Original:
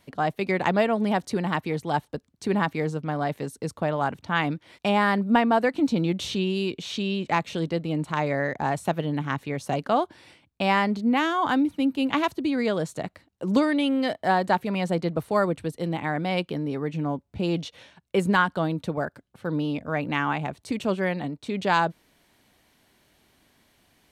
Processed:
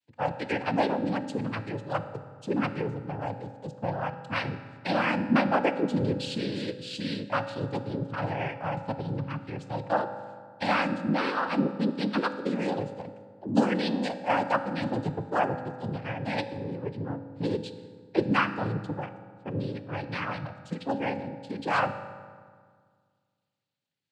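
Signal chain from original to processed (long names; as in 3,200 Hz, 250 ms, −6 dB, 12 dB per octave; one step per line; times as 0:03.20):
spectral dynamics exaggerated over time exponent 1.5
downsampling to 11,025 Hz
cochlear-implant simulation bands 8
on a send: convolution reverb RT60 1.8 s, pre-delay 3 ms, DRR 9 dB
on the sum: level −1.5 dB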